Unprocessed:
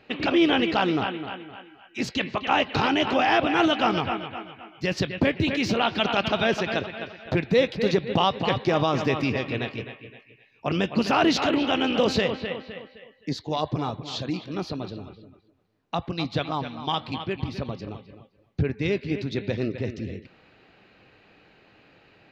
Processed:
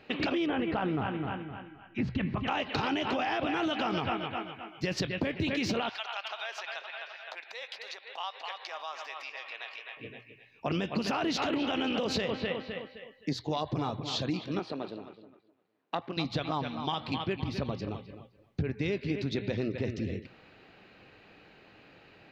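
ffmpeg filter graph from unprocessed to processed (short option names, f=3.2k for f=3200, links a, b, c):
-filter_complex "[0:a]asettb=1/sr,asplit=3[a][b][c];[a]atrim=end=0.464[d];[b]atrim=start=0.46:end=2.48,asetpts=PTS-STARTPTS,afade=t=in:d=0.004:c=qsin,afade=t=out:st=2.016:d=0.004:c=qsin,lowpass=1.9k,asubboost=boost=11:cutoff=180,aecho=1:1:325:0.0841,atrim=end_sample=89082[e];[c]atrim=start=2.476[f];[d][e]acrossfade=d=0.004:c1=hsin:c2=qsin[g];[g][f]acrossfade=d=0.004:c1=qsin:c2=hsin,asettb=1/sr,asplit=3[h][i][j];[h]atrim=end=5.894[k];[i]atrim=start=5.89:end=9.97,asetpts=PTS-STARTPTS,afade=t=in:d=0.004:c=qsin,afade=t=out:st=4.076:d=0.004:c=qsin,acompressor=threshold=-34dB:ratio=3:attack=3.2:release=140:knee=1:detection=peak,highpass=f=750:w=0.5412,highpass=f=750:w=1.3066[l];[j]atrim=start=9.966[m];[k][l]acrossfade=d=0.004:c1=hsin:c2=qsin[n];[n][m]acrossfade=d=0.004:c1=qsin:c2=hsin,asettb=1/sr,asplit=3[o][p][q];[o]atrim=end=14.594[r];[p]atrim=start=14.59:end=16.17,asetpts=PTS-STARTPTS,afade=t=in:d=0.004:c=qsin,afade=t=out:st=1.576:d=0.004:c=qsin,aeval=exprs='if(lt(val(0),0),0.447*val(0),val(0))':c=same,highpass=260,lowpass=3.5k[s];[q]atrim=start=16.166[t];[r][s]acrossfade=d=0.004:c1=hsin:c2=qsin[u];[u][t]acrossfade=d=0.004:c1=qsin:c2=hsin,bandreject=f=60:t=h:w=6,bandreject=f=120:t=h:w=6,alimiter=limit=-17dB:level=0:latency=1:release=40,acompressor=threshold=-27dB:ratio=6"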